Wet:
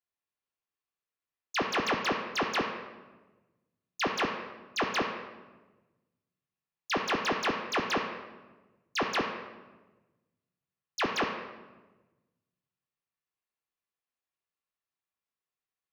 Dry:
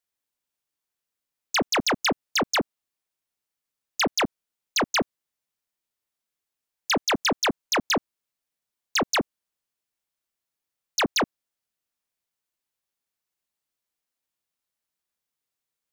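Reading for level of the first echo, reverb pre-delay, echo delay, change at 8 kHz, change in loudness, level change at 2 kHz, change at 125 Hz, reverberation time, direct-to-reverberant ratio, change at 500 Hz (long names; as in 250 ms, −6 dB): no echo audible, 3 ms, no echo audible, −14.0 dB, −6.5 dB, −4.5 dB, −5.5 dB, 1.2 s, −1.5 dB, −5.0 dB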